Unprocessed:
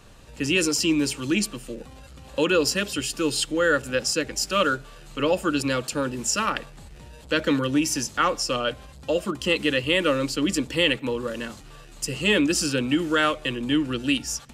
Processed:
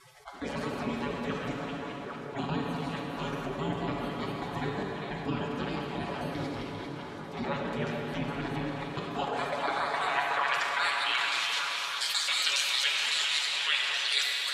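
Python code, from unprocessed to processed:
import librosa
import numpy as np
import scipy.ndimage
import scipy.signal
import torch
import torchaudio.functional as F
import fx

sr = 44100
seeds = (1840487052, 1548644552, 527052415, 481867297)

p1 = fx.local_reverse(x, sr, ms=138.0)
p2 = fx.highpass(p1, sr, hz=140.0, slope=6)
p3 = fx.spec_gate(p2, sr, threshold_db=-25, keep='weak')
p4 = fx.high_shelf(p3, sr, hz=4100.0, db=-6.0)
p5 = p4 + 0.54 * np.pad(p4, (int(7.1 * sr / 1000.0), 0))[:len(p4)]
p6 = fx.rider(p5, sr, range_db=10, speed_s=0.5)
p7 = p5 + (p6 * librosa.db_to_amplitude(-1.0))
p8 = fx.filter_sweep_bandpass(p7, sr, from_hz=230.0, to_hz=3900.0, start_s=8.56, end_s=11.75, q=1.3)
p9 = p8 + fx.echo_stepped(p8, sr, ms=397, hz=3000.0, octaves=-1.4, feedback_pct=70, wet_db=-6.5, dry=0)
p10 = fx.rev_plate(p9, sr, seeds[0], rt60_s=2.7, hf_ratio=0.8, predelay_ms=0, drr_db=2.5)
p11 = fx.env_flatten(p10, sr, amount_pct=50)
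y = p11 * librosa.db_to_amplitude(9.0)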